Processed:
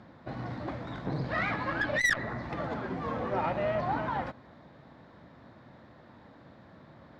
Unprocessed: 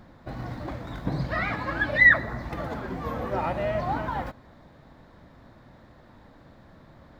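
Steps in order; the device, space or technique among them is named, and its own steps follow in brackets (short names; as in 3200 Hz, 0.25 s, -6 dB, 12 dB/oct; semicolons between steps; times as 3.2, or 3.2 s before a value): valve radio (BPF 100–4900 Hz; tube stage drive 18 dB, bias 0.25; core saturation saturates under 480 Hz)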